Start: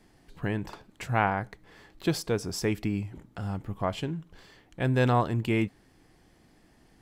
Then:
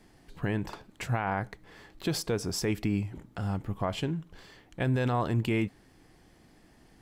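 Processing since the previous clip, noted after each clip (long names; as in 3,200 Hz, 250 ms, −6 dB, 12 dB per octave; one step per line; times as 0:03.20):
brickwall limiter −20 dBFS, peak gain reduction 10 dB
level +1.5 dB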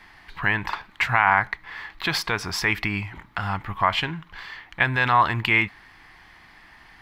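octave-band graphic EQ 125/250/500/1,000/2,000/4,000/8,000 Hz −4/−6/−9/+11/+12/+6/−8 dB
level +5 dB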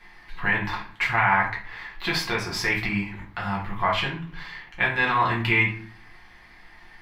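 rectangular room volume 39 cubic metres, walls mixed, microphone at 0.92 metres
level −6.5 dB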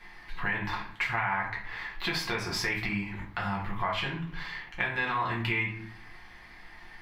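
downward compressor 3 to 1, threshold −29 dBFS, peak gain reduction 10 dB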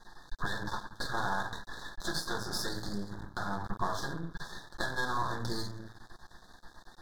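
half-wave rectification
Chebyshev band-stop filter 1,700–3,600 Hz, order 4
level +2 dB
AAC 96 kbit/s 48,000 Hz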